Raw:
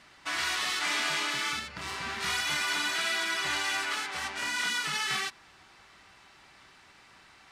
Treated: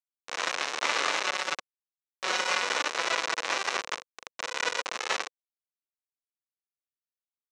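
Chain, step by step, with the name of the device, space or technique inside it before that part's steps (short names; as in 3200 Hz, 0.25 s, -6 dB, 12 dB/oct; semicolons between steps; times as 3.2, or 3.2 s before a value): hand-held game console (bit-crush 4-bit; speaker cabinet 420–5600 Hz, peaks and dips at 500 Hz +5 dB, 1100 Hz +4 dB, 3300 Hz -5 dB, 4700 Hz -7 dB); 1.23–2.63 comb 5.4 ms, depth 74%; gain +7 dB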